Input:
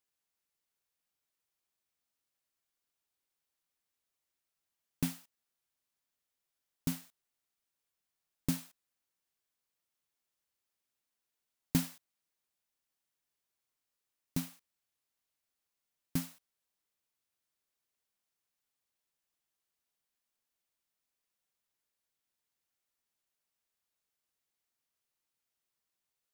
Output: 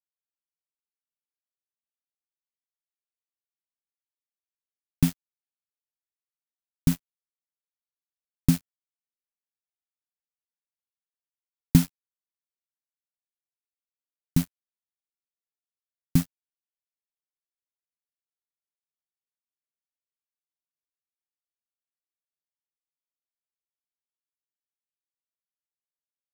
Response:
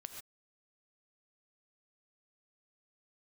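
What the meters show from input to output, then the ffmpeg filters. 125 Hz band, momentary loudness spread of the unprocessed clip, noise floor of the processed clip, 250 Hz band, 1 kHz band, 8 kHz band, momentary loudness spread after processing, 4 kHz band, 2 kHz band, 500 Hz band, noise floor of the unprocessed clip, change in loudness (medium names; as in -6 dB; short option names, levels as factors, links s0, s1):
+14.5 dB, 13 LU, under -85 dBFS, +12.0 dB, +5.5 dB, +6.5 dB, 12 LU, +6.5 dB, +6.0 dB, +6.0 dB, under -85 dBFS, +12.0 dB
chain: -af "acrusher=bits=5:mix=0:aa=0.5,asubboost=boost=3.5:cutoff=240,volume=2"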